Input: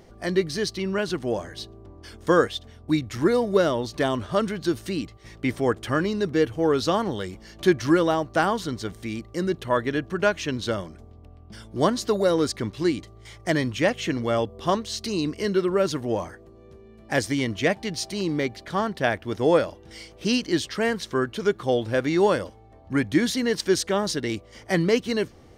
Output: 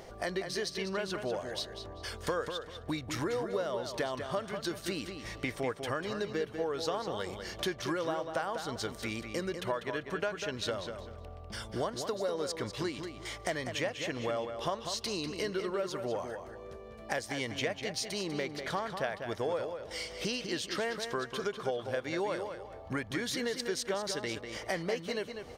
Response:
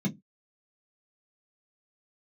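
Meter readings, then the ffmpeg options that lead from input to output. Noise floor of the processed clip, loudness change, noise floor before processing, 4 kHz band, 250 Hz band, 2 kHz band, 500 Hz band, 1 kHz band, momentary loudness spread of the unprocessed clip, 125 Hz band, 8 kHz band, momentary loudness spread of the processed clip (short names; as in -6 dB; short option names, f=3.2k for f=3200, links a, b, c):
-48 dBFS, -11.0 dB, -49 dBFS, -6.0 dB, -14.0 dB, -8.5 dB, -10.5 dB, -9.5 dB, 10 LU, -12.0 dB, -6.0 dB, 5 LU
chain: -filter_complex "[0:a]lowshelf=f=400:t=q:w=1.5:g=-6.5,acompressor=threshold=-38dB:ratio=5,asplit=2[a][b];[b]adelay=196,lowpass=f=5k:p=1,volume=-7dB,asplit=2[c][d];[d]adelay=196,lowpass=f=5k:p=1,volume=0.3,asplit=2[e][f];[f]adelay=196,lowpass=f=5k:p=1,volume=0.3,asplit=2[g][h];[h]adelay=196,lowpass=f=5k:p=1,volume=0.3[i];[c][e][g][i]amix=inputs=4:normalize=0[j];[a][j]amix=inputs=2:normalize=0,volume=4.5dB"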